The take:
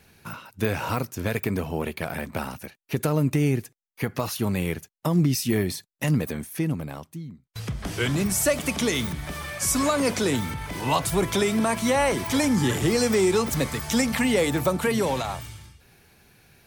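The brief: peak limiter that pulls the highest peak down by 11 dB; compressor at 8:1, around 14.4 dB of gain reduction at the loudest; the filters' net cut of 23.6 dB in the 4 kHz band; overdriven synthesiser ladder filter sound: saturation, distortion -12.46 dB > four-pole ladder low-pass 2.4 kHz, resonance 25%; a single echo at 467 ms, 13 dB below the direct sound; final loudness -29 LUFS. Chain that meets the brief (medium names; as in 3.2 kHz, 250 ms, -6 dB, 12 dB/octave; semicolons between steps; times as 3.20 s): peaking EQ 4 kHz -7 dB; compression 8:1, threshold -33 dBFS; peak limiter -30.5 dBFS; delay 467 ms -13 dB; saturation -38 dBFS; four-pole ladder low-pass 2.4 kHz, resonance 25%; trim +21 dB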